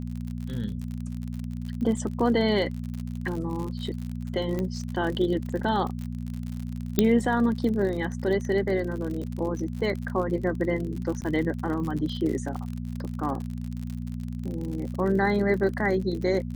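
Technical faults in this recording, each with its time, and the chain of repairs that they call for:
surface crackle 54 per second −32 dBFS
mains hum 60 Hz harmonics 4 −33 dBFS
0:04.59: click −18 dBFS
0:06.99: click −6 dBFS
0:11.21–0:11.22: drop-out 9.2 ms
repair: click removal
hum removal 60 Hz, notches 4
repair the gap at 0:11.21, 9.2 ms

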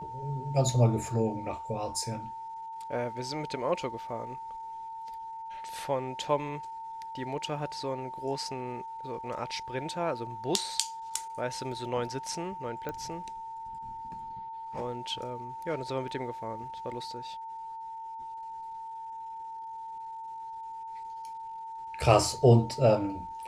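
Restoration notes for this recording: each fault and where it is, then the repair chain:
whistle 900 Hz −38 dBFS
0:12.89: click −22 dBFS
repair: click removal
notch filter 900 Hz, Q 30

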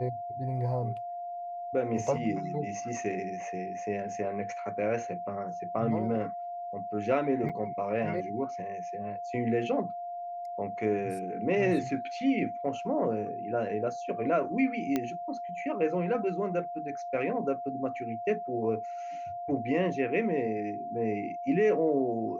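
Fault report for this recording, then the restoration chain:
whistle 700 Hz −35 dBFS
0:07.49–0:07.50: drop-out 5.6 ms
0:14.96: click −15 dBFS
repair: click removal
notch filter 700 Hz, Q 30
repair the gap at 0:07.49, 5.6 ms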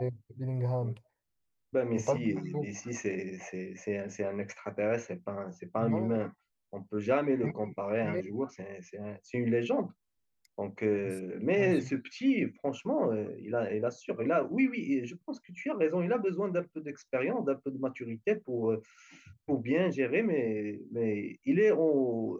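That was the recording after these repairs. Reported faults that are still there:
none of them is left

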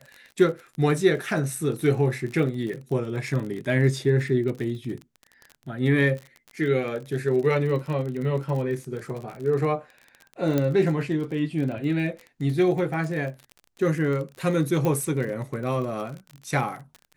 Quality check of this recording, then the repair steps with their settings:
surface crackle 38 per second −32 dBFS
0:10.58: click −11 dBFS
0:14.85: click −14 dBFS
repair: click removal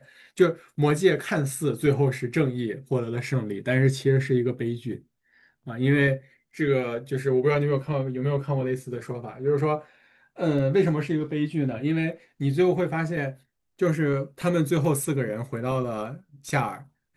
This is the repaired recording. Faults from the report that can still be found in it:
0:10.58: click
0:14.85: click

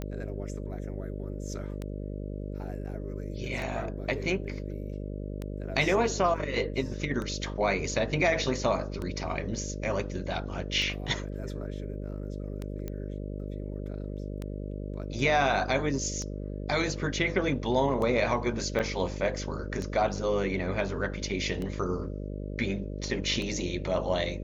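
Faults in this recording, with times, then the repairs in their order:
mains buzz 50 Hz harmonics 12 −36 dBFS
scratch tick 33 1/3 rpm −22 dBFS
0:12.88: click −22 dBFS
0:18.79–0:18.80: drop-out 7.7 ms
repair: click removal
hum removal 50 Hz, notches 12
repair the gap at 0:18.79, 7.7 ms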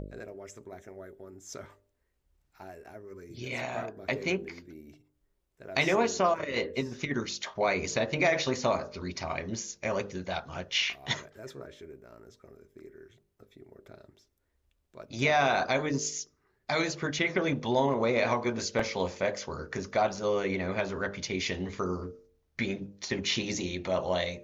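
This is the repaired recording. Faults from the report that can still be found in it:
none of them is left

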